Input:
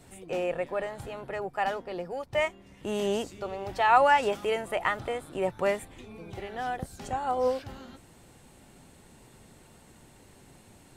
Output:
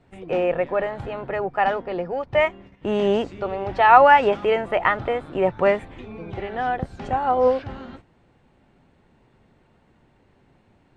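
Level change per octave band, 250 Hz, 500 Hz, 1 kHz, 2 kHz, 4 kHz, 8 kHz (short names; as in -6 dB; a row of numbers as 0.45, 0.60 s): +8.5 dB, +8.5 dB, +8.5 dB, +7.5 dB, +3.5 dB, under -10 dB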